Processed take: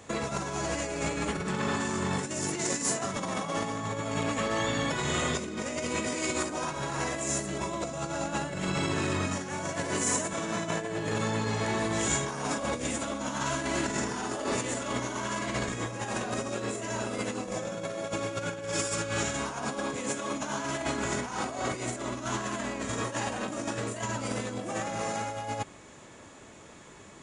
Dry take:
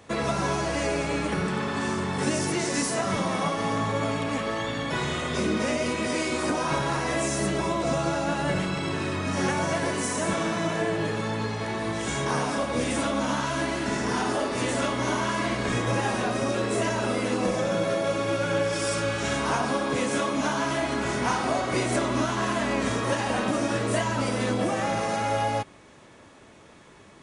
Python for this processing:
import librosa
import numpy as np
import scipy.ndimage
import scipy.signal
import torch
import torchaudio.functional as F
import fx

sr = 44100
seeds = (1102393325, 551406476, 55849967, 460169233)

y = fx.over_compress(x, sr, threshold_db=-29.0, ratio=-0.5)
y = fx.peak_eq(y, sr, hz=7100.0, db=11.5, octaves=0.25)
y = F.gain(torch.from_numpy(y), -2.5).numpy()